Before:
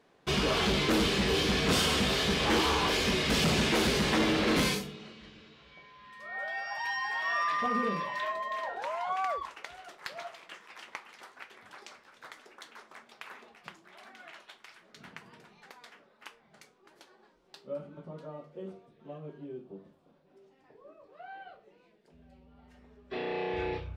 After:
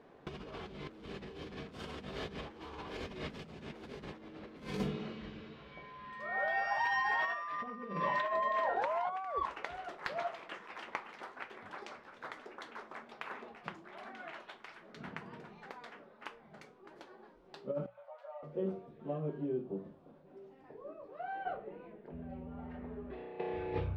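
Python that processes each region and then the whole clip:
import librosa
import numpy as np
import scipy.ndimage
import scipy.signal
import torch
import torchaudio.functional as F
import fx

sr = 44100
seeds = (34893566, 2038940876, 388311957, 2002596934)

y = fx.chain(x, sr, fx.cheby_ripple_highpass(hz=530.0, ripple_db=6),
    fx.ensemble(), at=(17.86, 18.43))
y = fx.chain(y, sr, fx.env_lowpass(base_hz=2300.0, full_db=-33.5),
    fx.over_compress(threshold_db=-47.0, ratio=-1.0),
    fx.air_absorb(metres=94.0), at=(21.45, 23.4))
y = fx.lowpass(y, sr, hz=1100.0, slope=6)
y = fx.hum_notches(y, sr, base_hz=60, count=3)
y = fx.over_compress(y, sr, threshold_db=-38.0, ratio=-0.5)
y = y * librosa.db_to_amplitude(1.0)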